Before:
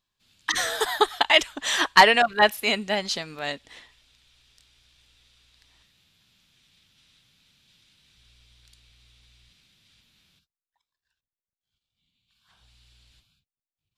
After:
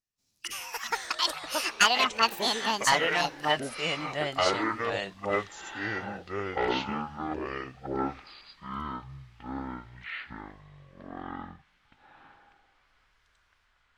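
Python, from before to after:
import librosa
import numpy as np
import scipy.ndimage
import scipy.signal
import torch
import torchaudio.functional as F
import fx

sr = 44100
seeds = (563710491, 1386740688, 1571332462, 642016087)

y = fx.doppler_pass(x, sr, speed_mps=30, closest_m=28.0, pass_at_s=3.69)
y = fx.formant_shift(y, sr, semitones=6)
y = fx.echo_pitch(y, sr, ms=163, semitones=-7, count=3, db_per_echo=-3.0)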